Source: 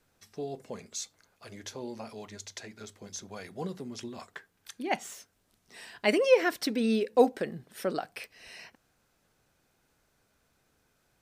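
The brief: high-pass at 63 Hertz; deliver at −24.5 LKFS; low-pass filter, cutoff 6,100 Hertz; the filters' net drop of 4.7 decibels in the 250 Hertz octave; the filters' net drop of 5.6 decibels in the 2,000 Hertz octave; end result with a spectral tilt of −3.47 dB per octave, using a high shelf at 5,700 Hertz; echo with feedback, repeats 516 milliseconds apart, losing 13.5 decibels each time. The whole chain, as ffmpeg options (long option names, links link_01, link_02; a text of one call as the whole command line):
ffmpeg -i in.wav -af "highpass=63,lowpass=6100,equalizer=frequency=250:width_type=o:gain=-5.5,equalizer=frequency=2000:width_type=o:gain=-6,highshelf=frequency=5700:gain=-5.5,aecho=1:1:516|1032:0.211|0.0444,volume=8.5dB" out.wav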